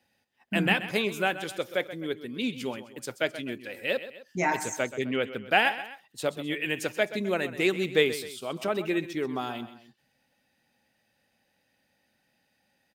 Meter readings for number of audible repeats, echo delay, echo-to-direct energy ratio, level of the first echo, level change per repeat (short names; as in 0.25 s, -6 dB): 2, 0.129 s, -12.5 dB, -13.5 dB, -6.0 dB